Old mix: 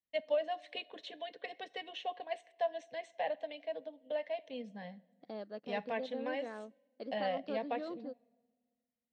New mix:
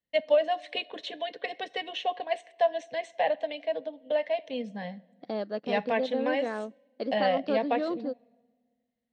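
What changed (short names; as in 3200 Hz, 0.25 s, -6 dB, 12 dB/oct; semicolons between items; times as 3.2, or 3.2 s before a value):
first voice +9.5 dB; second voice +11.5 dB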